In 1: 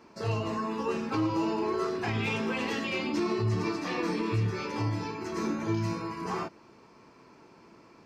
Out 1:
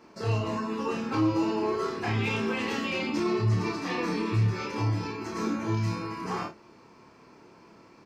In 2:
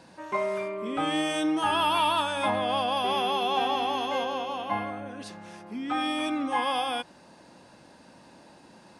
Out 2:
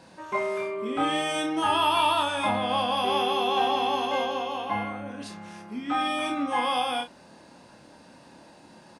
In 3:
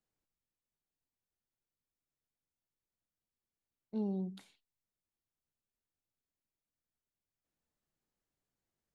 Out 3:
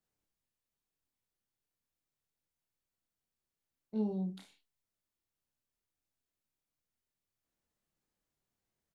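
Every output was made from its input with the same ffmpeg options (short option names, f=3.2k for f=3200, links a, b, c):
-af "aecho=1:1:28|53:0.596|0.266"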